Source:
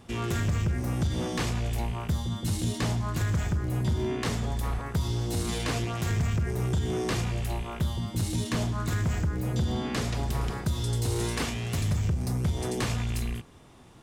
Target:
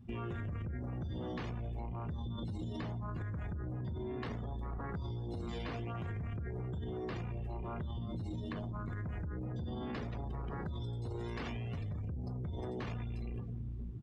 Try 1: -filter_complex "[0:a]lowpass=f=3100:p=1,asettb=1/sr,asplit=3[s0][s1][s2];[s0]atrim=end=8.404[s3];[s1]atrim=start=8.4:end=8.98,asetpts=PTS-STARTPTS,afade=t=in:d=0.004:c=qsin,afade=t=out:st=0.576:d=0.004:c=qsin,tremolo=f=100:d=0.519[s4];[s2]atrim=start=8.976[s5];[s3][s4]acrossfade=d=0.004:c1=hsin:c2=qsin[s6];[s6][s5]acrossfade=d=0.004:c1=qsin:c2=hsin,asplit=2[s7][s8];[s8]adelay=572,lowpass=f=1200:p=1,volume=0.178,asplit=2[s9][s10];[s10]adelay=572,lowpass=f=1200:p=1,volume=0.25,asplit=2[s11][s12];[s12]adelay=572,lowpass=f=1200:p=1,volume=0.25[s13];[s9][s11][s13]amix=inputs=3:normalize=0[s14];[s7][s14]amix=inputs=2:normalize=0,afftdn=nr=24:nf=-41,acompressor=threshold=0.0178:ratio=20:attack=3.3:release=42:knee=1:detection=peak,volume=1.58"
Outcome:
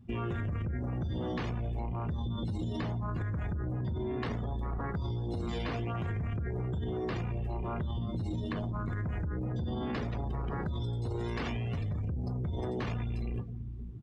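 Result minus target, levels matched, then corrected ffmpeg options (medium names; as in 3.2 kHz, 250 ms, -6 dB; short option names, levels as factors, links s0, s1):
compression: peak gain reduction -5.5 dB
-filter_complex "[0:a]lowpass=f=3100:p=1,asettb=1/sr,asplit=3[s0][s1][s2];[s0]atrim=end=8.404[s3];[s1]atrim=start=8.4:end=8.98,asetpts=PTS-STARTPTS,afade=t=in:d=0.004:c=qsin,afade=t=out:st=0.576:d=0.004:c=qsin,tremolo=f=100:d=0.519[s4];[s2]atrim=start=8.976[s5];[s3][s4]acrossfade=d=0.004:c1=hsin:c2=qsin[s6];[s6][s5]acrossfade=d=0.004:c1=qsin:c2=hsin,asplit=2[s7][s8];[s8]adelay=572,lowpass=f=1200:p=1,volume=0.178,asplit=2[s9][s10];[s10]adelay=572,lowpass=f=1200:p=1,volume=0.25,asplit=2[s11][s12];[s12]adelay=572,lowpass=f=1200:p=1,volume=0.25[s13];[s9][s11][s13]amix=inputs=3:normalize=0[s14];[s7][s14]amix=inputs=2:normalize=0,afftdn=nr=24:nf=-41,acompressor=threshold=0.00891:ratio=20:attack=3.3:release=42:knee=1:detection=peak,volume=1.58"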